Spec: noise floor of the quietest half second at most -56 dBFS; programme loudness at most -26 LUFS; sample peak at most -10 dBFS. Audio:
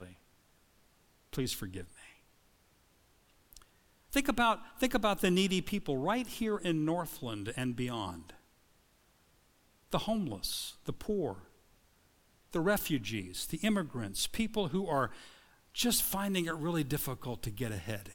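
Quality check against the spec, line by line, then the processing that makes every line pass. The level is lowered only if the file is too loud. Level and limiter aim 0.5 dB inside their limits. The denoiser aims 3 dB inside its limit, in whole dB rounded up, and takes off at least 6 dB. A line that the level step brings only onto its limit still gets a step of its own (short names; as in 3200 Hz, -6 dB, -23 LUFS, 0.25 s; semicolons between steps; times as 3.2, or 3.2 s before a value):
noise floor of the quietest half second -68 dBFS: OK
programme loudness -34.0 LUFS: OK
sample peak -16.5 dBFS: OK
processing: none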